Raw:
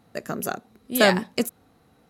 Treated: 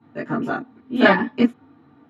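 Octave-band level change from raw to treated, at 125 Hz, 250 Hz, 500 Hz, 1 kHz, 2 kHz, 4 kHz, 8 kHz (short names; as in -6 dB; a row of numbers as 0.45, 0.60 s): +1.5 dB, +7.5 dB, +1.5 dB, +4.5 dB, +4.5 dB, -2.5 dB, under -20 dB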